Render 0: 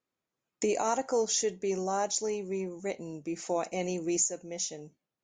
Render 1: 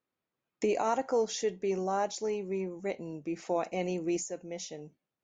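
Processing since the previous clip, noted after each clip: LPF 3900 Hz 12 dB/oct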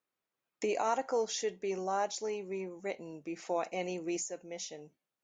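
low shelf 330 Hz -10 dB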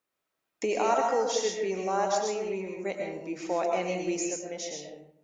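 digital reverb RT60 0.72 s, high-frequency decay 0.55×, pre-delay 75 ms, DRR 0.5 dB; gain +3.5 dB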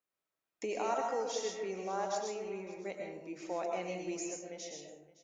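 echo 0.565 s -19.5 dB; gain -8.5 dB

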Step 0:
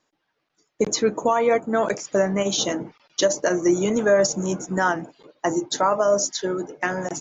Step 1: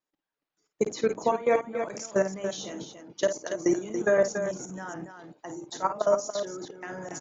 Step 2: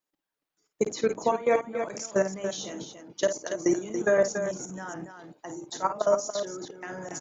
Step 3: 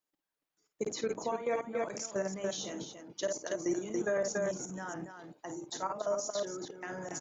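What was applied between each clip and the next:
level quantiser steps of 18 dB; loudspeakers at several distances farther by 18 m -10 dB, 97 m -8 dB; gain -2.5 dB
high shelf 5900 Hz +4 dB
limiter -21 dBFS, peak gain reduction 8.5 dB; gain -3 dB

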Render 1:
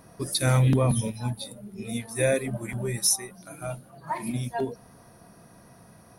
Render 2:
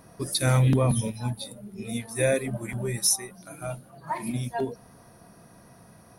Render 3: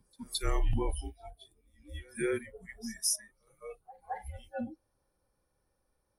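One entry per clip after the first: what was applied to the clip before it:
nothing audible
reverse echo 0.217 s -13.5 dB; frequency shift -160 Hz; spectral noise reduction 18 dB; gain -7.5 dB

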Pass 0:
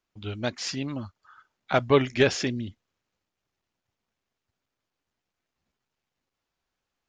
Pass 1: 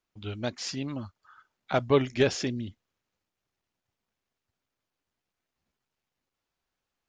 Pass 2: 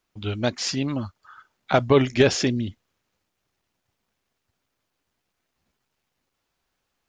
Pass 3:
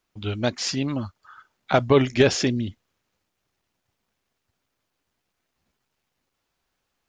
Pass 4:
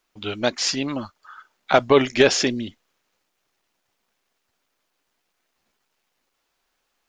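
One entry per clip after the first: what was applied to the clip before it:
dynamic EQ 1900 Hz, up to -4 dB, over -39 dBFS, Q 0.78; gain -2 dB
maximiser +13.5 dB; gain -5.5 dB
nothing audible
bell 92 Hz -14.5 dB 2.2 oct; gain +4.5 dB

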